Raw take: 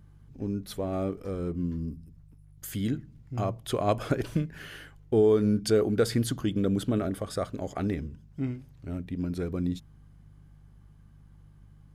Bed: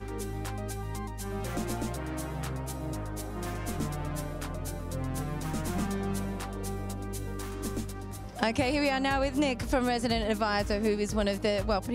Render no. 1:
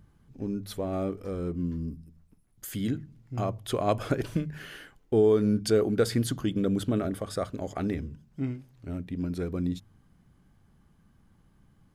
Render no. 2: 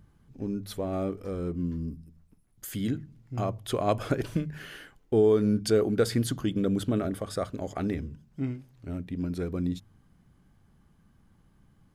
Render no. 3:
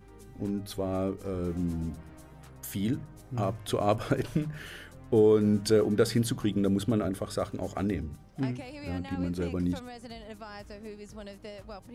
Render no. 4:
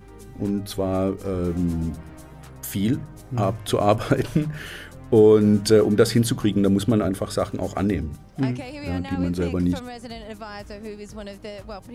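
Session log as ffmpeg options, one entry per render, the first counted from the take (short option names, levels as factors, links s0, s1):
-af "bandreject=f=50:t=h:w=4,bandreject=f=100:t=h:w=4,bandreject=f=150:t=h:w=4"
-af anull
-filter_complex "[1:a]volume=0.168[s0];[0:a][s0]amix=inputs=2:normalize=0"
-af "volume=2.37"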